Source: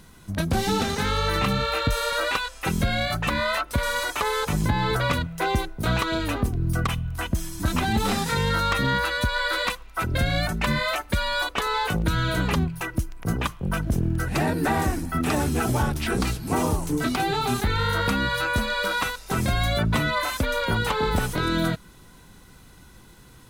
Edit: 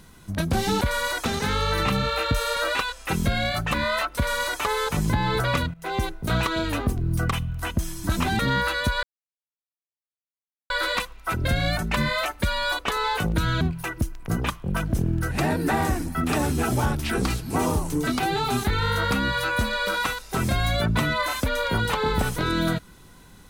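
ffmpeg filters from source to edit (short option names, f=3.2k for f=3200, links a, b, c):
-filter_complex "[0:a]asplit=7[a][b][c][d][e][f][g];[a]atrim=end=0.812[h];[b]atrim=start=3.728:end=4.172[i];[c]atrim=start=0.808:end=5.3,asetpts=PTS-STARTPTS,afade=t=out:st=4.488:d=0.004:c=hsin:silence=0.158489[j];[d]atrim=start=5.3:end=7.952,asetpts=PTS-STARTPTS,afade=t=in:d=0.33:silence=0.158489[k];[e]atrim=start=8.758:end=9.4,asetpts=PTS-STARTPTS,afade=t=out:st=0.638:d=0.004:c=hsin,apad=pad_dur=1.67[l];[f]atrim=start=9.4:end=12.312,asetpts=PTS-STARTPTS,afade=t=in:d=0.004:c=hsin[m];[g]atrim=start=12.578[n];[h][i]acrossfade=d=0.004:c1=hsin:c2=hsin[o];[j][k]concat=n=2:v=0:a=1[p];[o][p]acrossfade=d=0.004:c1=hsin:c2=hsin[q];[l][m]concat=n=2:v=0:a=1[r];[q][r]acrossfade=d=0.004:c1=hsin:c2=hsin[s];[s][n]acrossfade=d=0.004:c1=hsin:c2=hsin"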